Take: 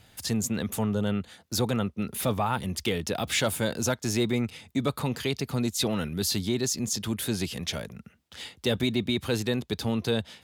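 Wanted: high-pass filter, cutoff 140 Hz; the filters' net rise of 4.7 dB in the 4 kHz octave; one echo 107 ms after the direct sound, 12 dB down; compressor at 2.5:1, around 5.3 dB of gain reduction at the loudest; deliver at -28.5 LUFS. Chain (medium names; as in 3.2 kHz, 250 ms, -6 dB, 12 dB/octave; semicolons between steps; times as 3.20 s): high-pass 140 Hz; peaking EQ 4 kHz +5.5 dB; compression 2.5:1, threshold -28 dBFS; delay 107 ms -12 dB; trim +2.5 dB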